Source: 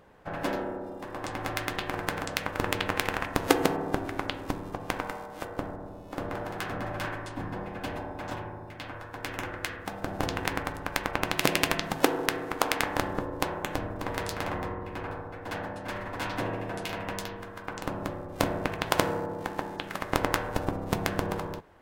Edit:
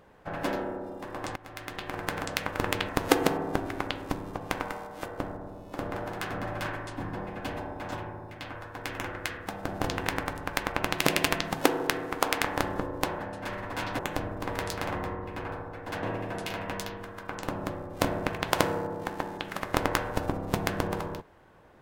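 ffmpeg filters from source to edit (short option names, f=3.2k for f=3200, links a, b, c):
-filter_complex "[0:a]asplit=6[a][b][c][d][e][f];[a]atrim=end=1.36,asetpts=PTS-STARTPTS,afade=t=out:st=1.356:d=0.004:c=hsin:silence=0.105925[g];[b]atrim=start=1.36:end=2.892,asetpts=PTS-STARTPTS,afade=t=in:d=0.85:silence=0.105925[h];[c]atrim=start=3.278:end=13.582[i];[d]atrim=start=15.618:end=16.422[j];[e]atrim=start=13.578:end=15.622[k];[f]atrim=start=16.418[l];[g][h]concat=n=2:v=0:a=1[m];[m][i]acrossfade=d=0.004:c1=hsin:c2=hsin[n];[n][j]acrossfade=d=0.004:c1=hsin:c2=hsin[o];[o][k]acrossfade=d=0.004:c1=hsin:c2=hsin[p];[p][l]acrossfade=d=0.004:c1=hsin:c2=hsin"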